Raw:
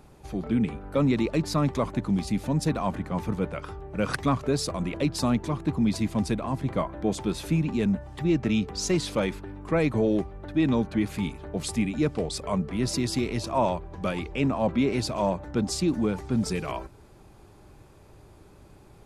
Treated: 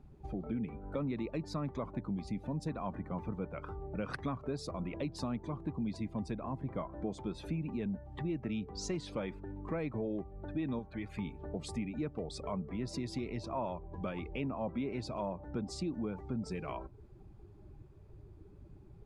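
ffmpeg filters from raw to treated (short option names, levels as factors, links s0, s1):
-filter_complex "[0:a]asettb=1/sr,asplit=3[s0][s1][s2];[s0]atrim=end=10.794[s3];[s1]atrim=start=10.79:end=11.19,asetpts=PTS-STARTPTS,afade=t=in:d=0.004:c=qsin,afade=t=out:st=0.396:d=0.004:c=qsin,equalizer=f=230:w=0.57:g=-9[s4];[s2]atrim=start=11.186[s5];[s3][s4]acrossfade=d=0.004:c1=hsin:c2=qsin[s6];[s6][s5]acrossfade=d=0.004:c1=qsin:c2=hsin,afftdn=nr=15:nf=-44,lowpass=f=3200:p=1,acompressor=threshold=0.01:ratio=2.5"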